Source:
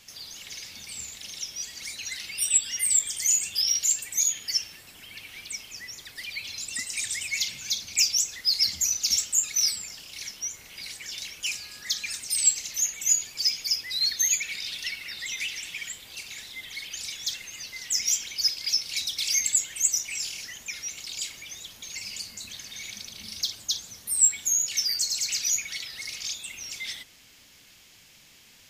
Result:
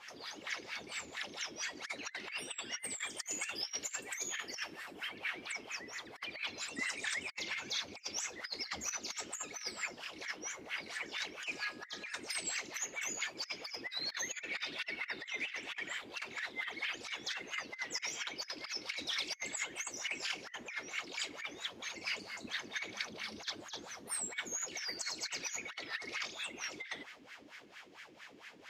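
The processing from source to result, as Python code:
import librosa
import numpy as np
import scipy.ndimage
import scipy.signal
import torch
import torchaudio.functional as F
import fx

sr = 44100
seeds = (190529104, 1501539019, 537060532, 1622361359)

y = fx.high_shelf(x, sr, hz=8400.0, db=8.0, at=(2.84, 5.09))
y = fx.wah_lfo(y, sr, hz=4.4, low_hz=300.0, high_hz=1800.0, q=3.4)
y = fx.dynamic_eq(y, sr, hz=1700.0, q=0.92, threshold_db=-59.0, ratio=4.0, max_db=6)
y = fx.over_compress(y, sr, threshold_db=-50.0, ratio=-0.5)
y = y * librosa.db_to_amplitude(10.5)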